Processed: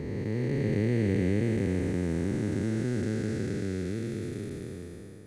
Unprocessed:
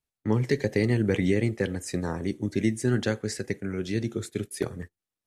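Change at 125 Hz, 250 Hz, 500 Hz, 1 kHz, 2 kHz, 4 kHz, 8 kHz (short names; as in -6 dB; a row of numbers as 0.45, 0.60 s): -1.0, -1.5, -3.5, -6.5, -6.0, -8.0, -8.5 dB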